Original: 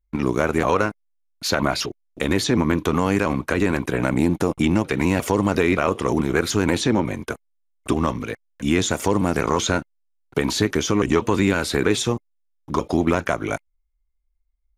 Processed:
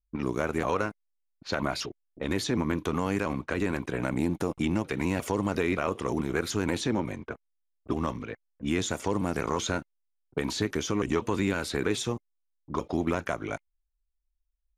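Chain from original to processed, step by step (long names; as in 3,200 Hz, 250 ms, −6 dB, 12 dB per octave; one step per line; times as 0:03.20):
low-pass that shuts in the quiet parts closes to 360 Hz, open at −18 dBFS
level −8.5 dB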